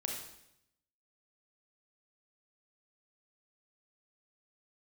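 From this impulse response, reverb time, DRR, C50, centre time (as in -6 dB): 0.80 s, 0.0 dB, 2.5 dB, 44 ms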